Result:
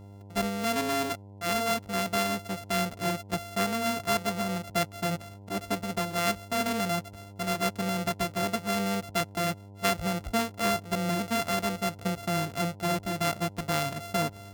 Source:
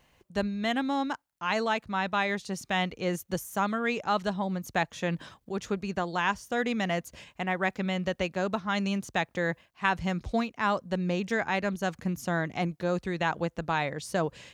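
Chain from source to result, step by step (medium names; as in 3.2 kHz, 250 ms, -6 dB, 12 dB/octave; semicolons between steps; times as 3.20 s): sorted samples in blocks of 64 samples; mains buzz 100 Hz, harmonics 10, -47 dBFS -7 dB/octave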